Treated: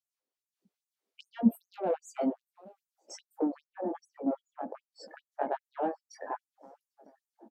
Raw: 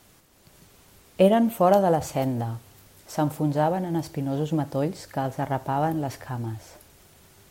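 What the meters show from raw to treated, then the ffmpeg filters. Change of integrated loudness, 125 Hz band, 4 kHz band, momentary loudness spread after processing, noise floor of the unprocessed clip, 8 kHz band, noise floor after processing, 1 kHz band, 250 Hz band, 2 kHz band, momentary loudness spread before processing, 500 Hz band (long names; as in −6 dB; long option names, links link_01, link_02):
−9.5 dB, below −20 dB, −14.0 dB, 20 LU, −56 dBFS, −12.0 dB, below −85 dBFS, −12.0 dB, −7.5 dB, −12.0 dB, 14 LU, −12.0 dB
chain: -filter_complex "[0:a]afftdn=noise_reduction=36:noise_floor=-37,equalizer=frequency=500:width=1.3:gain=4,aeval=exprs='0.631*(cos(1*acos(clip(val(0)/0.631,-1,1)))-cos(1*PI/2))+0.0224*(cos(8*acos(clip(val(0)/0.631,-1,1)))-cos(8*PI/2))':channel_layout=same,acrossover=split=140[link_01][link_02];[link_02]acompressor=threshold=-29dB:ratio=12[link_03];[link_01][link_03]amix=inputs=2:normalize=0,firequalizer=gain_entry='entry(120,0);entry(280,-19);entry(950,-18);entry(4400,-15);entry(8300,-19)':delay=0.05:min_phase=1,flanger=delay=16:depth=5:speed=1.2,asplit=2[link_04][link_05];[link_05]adynamicsmooth=sensitivity=4:basefreq=1000,volume=-0.5dB[link_06];[link_04][link_06]amix=inputs=2:normalize=0,asplit=2[link_07][link_08];[link_08]adelay=947,lowpass=frequency=2300:poles=1,volume=-24dB,asplit=2[link_09][link_10];[link_10]adelay=947,lowpass=frequency=2300:poles=1,volume=0.48,asplit=2[link_11][link_12];[link_12]adelay=947,lowpass=frequency=2300:poles=1,volume=0.48[link_13];[link_07][link_09][link_11][link_13]amix=inputs=4:normalize=0,alimiter=level_in=23dB:limit=-1dB:release=50:level=0:latency=1,afftfilt=real='re*gte(b*sr/1024,210*pow(6500/210,0.5+0.5*sin(2*PI*2.5*pts/sr)))':imag='im*gte(b*sr/1024,210*pow(6500/210,0.5+0.5*sin(2*PI*2.5*pts/sr)))':win_size=1024:overlap=0.75,volume=-1.5dB"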